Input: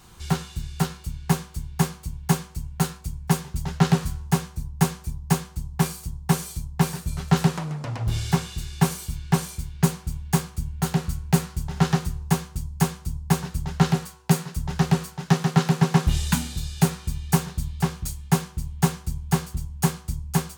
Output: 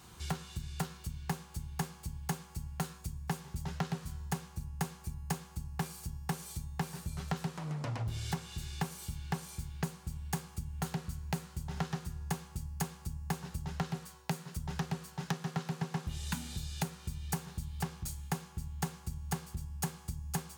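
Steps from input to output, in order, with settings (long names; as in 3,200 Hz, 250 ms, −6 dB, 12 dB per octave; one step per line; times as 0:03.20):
tuned comb filter 280 Hz, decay 1.2 s, mix 50%
downward compressor 6 to 1, threshold −35 dBFS, peak gain reduction 16 dB
high-pass filter 50 Hz
level +2 dB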